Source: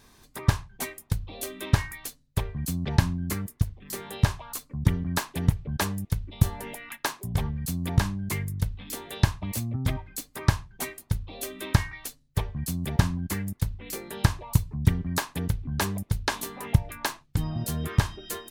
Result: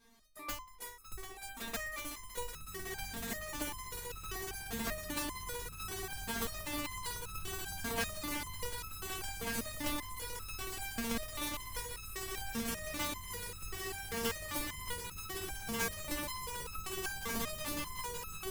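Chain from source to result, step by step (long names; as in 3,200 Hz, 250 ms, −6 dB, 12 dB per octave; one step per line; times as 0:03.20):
wrap-around overflow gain 17.5 dB
echo that builds up and dies away 186 ms, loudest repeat 8, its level −7 dB
step-sequenced resonator 5.1 Hz 230–1,300 Hz
level +4 dB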